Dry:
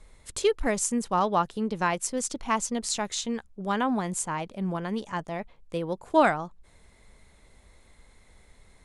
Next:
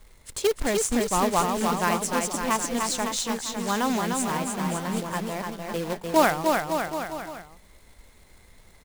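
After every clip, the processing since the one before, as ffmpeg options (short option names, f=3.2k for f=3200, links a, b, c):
-filter_complex "[0:a]acrusher=bits=2:mode=log:mix=0:aa=0.000001,asplit=2[a][b];[b]aecho=0:1:300|555|771.8|956|1113:0.631|0.398|0.251|0.158|0.1[c];[a][c]amix=inputs=2:normalize=0"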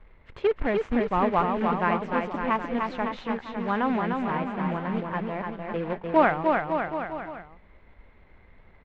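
-af "lowpass=f=2.5k:w=0.5412,lowpass=f=2.5k:w=1.3066"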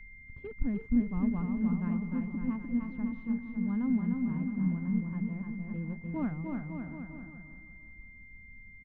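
-af "firequalizer=gain_entry='entry(250,0);entry(360,-19);entry(710,-27);entry(1000,-23);entry(2200,-30)':delay=0.05:min_phase=1,aeval=exprs='val(0)+0.00316*sin(2*PI*2100*n/s)':c=same,aecho=1:1:347|694|1041|1388:0.211|0.0888|0.0373|0.0157"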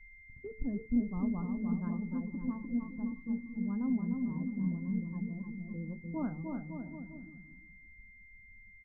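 -af "bandreject=f=72.85:t=h:w=4,bandreject=f=145.7:t=h:w=4,bandreject=f=218.55:t=h:w=4,bandreject=f=291.4:t=h:w=4,bandreject=f=364.25:t=h:w=4,bandreject=f=437.1:t=h:w=4,bandreject=f=509.95:t=h:w=4,bandreject=f=582.8:t=h:w=4,bandreject=f=655.65:t=h:w=4,bandreject=f=728.5:t=h:w=4,bandreject=f=801.35:t=h:w=4,bandreject=f=874.2:t=h:w=4,bandreject=f=947.05:t=h:w=4,bandreject=f=1.0199k:t=h:w=4,bandreject=f=1.09275k:t=h:w=4,bandreject=f=1.1656k:t=h:w=4,bandreject=f=1.23845k:t=h:w=4,bandreject=f=1.3113k:t=h:w=4,bandreject=f=1.38415k:t=h:w=4,bandreject=f=1.457k:t=h:w=4,bandreject=f=1.52985k:t=h:w=4,bandreject=f=1.6027k:t=h:w=4,bandreject=f=1.67555k:t=h:w=4,bandreject=f=1.7484k:t=h:w=4,bandreject=f=1.82125k:t=h:w=4,bandreject=f=1.8941k:t=h:w=4,bandreject=f=1.96695k:t=h:w=4,bandreject=f=2.0398k:t=h:w=4,bandreject=f=2.11265k:t=h:w=4,bandreject=f=2.1855k:t=h:w=4,afftdn=nr=16:nf=-46,equalizer=f=670:w=0.34:g=6.5,volume=-6.5dB"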